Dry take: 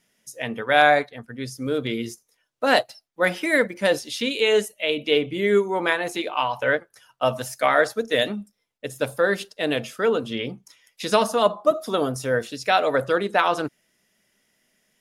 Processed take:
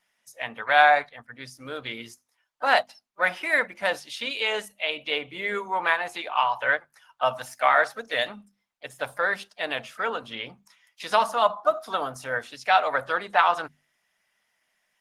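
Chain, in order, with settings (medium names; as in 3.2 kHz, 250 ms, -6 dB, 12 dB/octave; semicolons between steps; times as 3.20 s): low-pass 3.7 kHz 6 dB/octave; resonant low shelf 580 Hz -12 dB, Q 1.5; hum notches 50/100/150/200/250 Hz; harmony voices +3 st -17 dB; Opus 24 kbps 48 kHz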